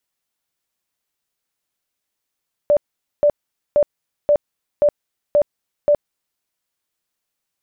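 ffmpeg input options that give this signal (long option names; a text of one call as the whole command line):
ffmpeg -f lavfi -i "aevalsrc='0.316*sin(2*PI*587*mod(t,0.53))*lt(mod(t,0.53),40/587)':duration=3.71:sample_rate=44100" out.wav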